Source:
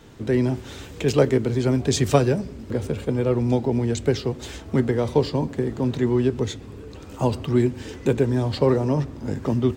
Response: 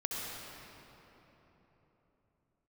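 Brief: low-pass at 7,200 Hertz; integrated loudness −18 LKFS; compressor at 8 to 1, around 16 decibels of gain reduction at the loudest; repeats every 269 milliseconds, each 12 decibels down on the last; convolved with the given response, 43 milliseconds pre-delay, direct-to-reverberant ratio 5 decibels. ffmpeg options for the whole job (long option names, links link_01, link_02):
-filter_complex "[0:a]lowpass=7200,acompressor=threshold=-29dB:ratio=8,aecho=1:1:269|538|807:0.251|0.0628|0.0157,asplit=2[link_01][link_02];[1:a]atrim=start_sample=2205,adelay=43[link_03];[link_02][link_03]afir=irnorm=-1:irlink=0,volume=-9dB[link_04];[link_01][link_04]amix=inputs=2:normalize=0,volume=14.5dB"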